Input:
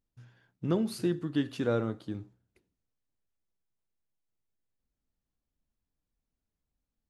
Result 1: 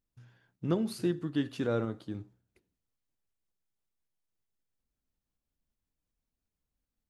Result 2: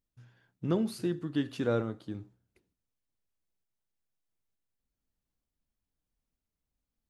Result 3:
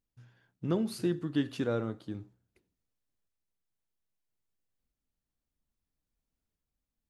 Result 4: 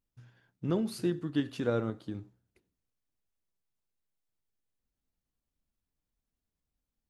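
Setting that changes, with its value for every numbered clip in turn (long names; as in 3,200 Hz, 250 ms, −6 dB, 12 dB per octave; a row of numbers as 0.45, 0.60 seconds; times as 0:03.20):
shaped tremolo, speed: 5.4, 1.1, 0.61, 10 Hertz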